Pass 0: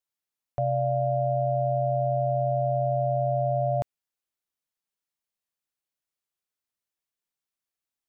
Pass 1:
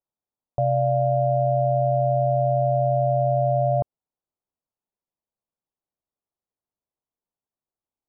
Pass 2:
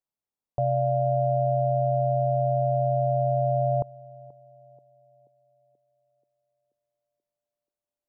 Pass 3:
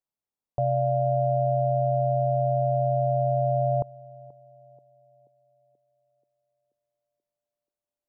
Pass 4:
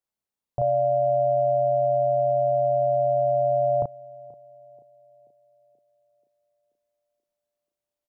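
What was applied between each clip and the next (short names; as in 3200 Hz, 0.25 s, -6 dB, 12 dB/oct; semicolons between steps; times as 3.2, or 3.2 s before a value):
LPF 1000 Hz 24 dB/oct; gain +4.5 dB
narrowing echo 0.482 s, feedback 63%, band-pass 340 Hz, level -19 dB; gain -3 dB
nothing audible
doubler 34 ms -2 dB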